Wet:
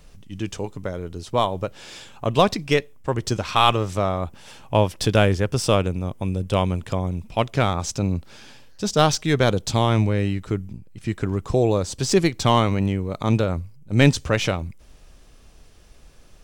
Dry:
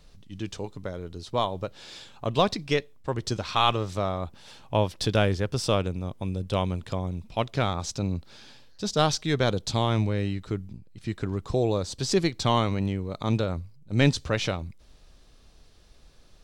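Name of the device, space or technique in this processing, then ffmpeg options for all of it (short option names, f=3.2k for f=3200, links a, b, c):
exciter from parts: -filter_complex "[0:a]asplit=2[a][b];[b]highpass=2k,asoftclip=type=tanh:threshold=-26.5dB,highpass=f=3.2k:w=0.5412,highpass=f=3.2k:w=1.3066,volume=-5dB[c];[a][c]amix=inputs=2:normalize=0,volume=5.5dB"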